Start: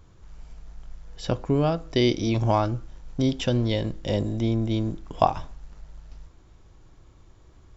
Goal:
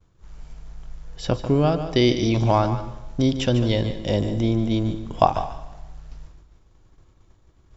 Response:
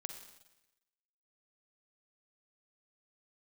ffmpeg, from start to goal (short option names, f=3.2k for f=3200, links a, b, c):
-filter_complex "[0:a]agate=range=-33dB:threshold=-44dB:ratio=3:detection=peak,asplit=2[a][b];[1:a]atrim=start_sample=2205,adelay=147[c];[b][c]afir=irnorm=-1:irlink=0,volume=-7.5dB[d];[a][d]amix=inputs=2:normalize=0,volume=3dB"